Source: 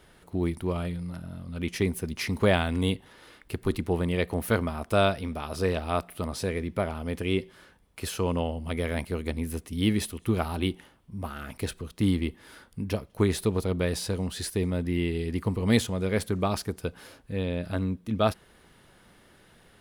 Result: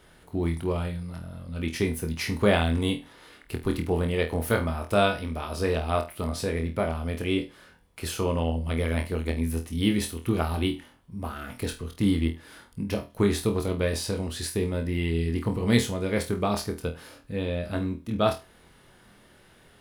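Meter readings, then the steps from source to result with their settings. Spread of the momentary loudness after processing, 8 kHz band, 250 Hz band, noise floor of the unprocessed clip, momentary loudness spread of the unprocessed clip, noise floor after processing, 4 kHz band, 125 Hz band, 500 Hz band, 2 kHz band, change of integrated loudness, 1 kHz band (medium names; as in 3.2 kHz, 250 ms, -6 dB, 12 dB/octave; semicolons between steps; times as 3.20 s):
12 LU, +1.5 dB, +1.0 dB, -58 dBFS, 11 LU, -56 dBFS, +1.5 dB, +1.0 dB, +1.0 dB, +1.5 dB, +1.0 dB, +1.5 dB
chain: flutter echo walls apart 4.2 m, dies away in 0.26 s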